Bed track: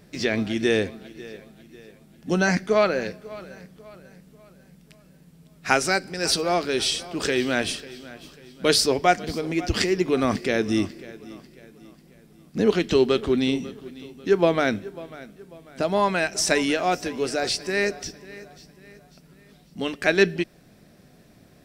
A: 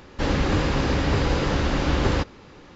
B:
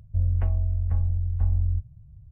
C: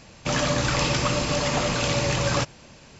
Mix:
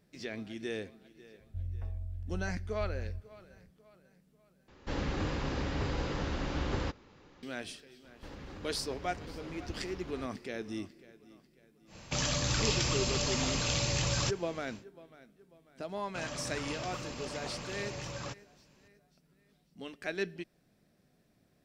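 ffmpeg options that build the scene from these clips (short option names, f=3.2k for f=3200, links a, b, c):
-filter_complex "[1:a]asplit=2[a][b];[3:a]asplit=2[c][d];[0:a]volume=-16.5dB[e];[b]acompressor=threshold=-28dB:ratio=6:attack=3.2:release=140:knee=1:detection=peak[f];[c]acrossover=split=120|3000[g][h][i];[h]acompressor=threshold=-31dB:ratio=6:attack=3.2:release=140:knee=2.83:detection=peak[j];[g][j][i]amix=inputs=3:normalize=0[k];[e]asplit=2[l][m];[l]atrim=end=4.684[n];[a]atrim=end=2.75,asetpts=PTS-STARTPTS,volume=-12dB[o];[m]atrim=start=7.426[p];[2:a]atrim=end=2.31,asetpts=PTS-STARTPTS,volume=-15dB,afade=t=in:d=0.004:c=hsin,afade=t=out:st=2.306:d=0.004:c=hsin,adelay=1400[q];[f]atrim=end=2.75,asetpts=PTS-STARTPTS,volume=-15dB,afade=t=in:d=0.004:c=hsin,afade=t=out:st=2.746:d=0.004:c=hsin,adelay=8040[r];[k]atrim=end=2.99,asetpts=PTS-STARTPTS,volume=-3dB,afade=t=in:d=0.1,afade=t=out:st=2.89:d=0.1,adelay=523026S[s];[d]atrim=end=2.99,asetpts=PTS-STARTPTS,volume=-17.5dB,afade=t=in:d=0.004:c=hsin,afade=t=out:st=2.986:d=0.004:c=hsin,adelay=15890[t];[n][o]acrossfade=d=0.004:c1=hsin:c2=hsin[u];[u][p]acrossfade=d=0.004:c1=hsin:c2=hsin[v];[v][q][r][s][t]amix=inputs=5:normalize=0"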